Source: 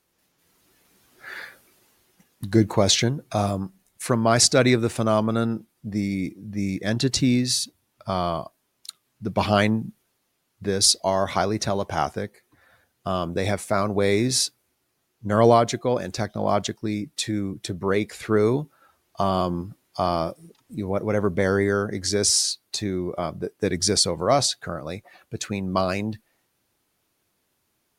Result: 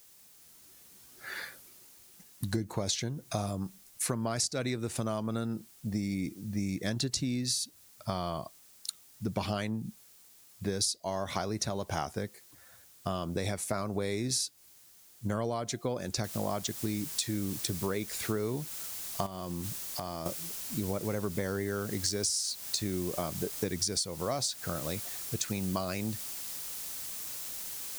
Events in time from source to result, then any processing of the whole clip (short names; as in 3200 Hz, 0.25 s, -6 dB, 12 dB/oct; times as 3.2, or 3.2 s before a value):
16.24 noise floor step -61 dB -43 dB
19.26–20.26 compressor 5:1, threshold -30 dBFS
whole clip: tone controls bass +3 dB, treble +8 dB; compressor 12:1, threshold -24 dBFS; gain -4 dB